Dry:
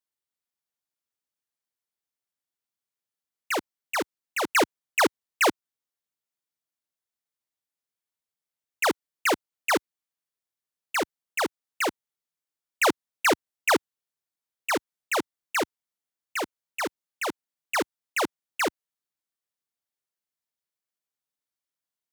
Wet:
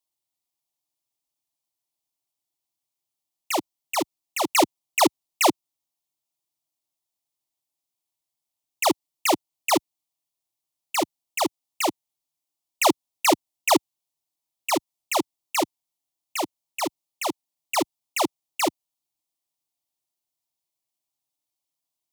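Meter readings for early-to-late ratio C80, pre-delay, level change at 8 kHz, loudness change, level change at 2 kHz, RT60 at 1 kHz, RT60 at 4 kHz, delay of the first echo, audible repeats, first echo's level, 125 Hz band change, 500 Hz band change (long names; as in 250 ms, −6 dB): no reverb audible, no reverb audible, +5.5 dB, +2.5 dB, −4.0 dB, no reverb audible, no reverb audible, no echo audible, no echo audible, no echo audible, +3.5 dB, +2.0 dB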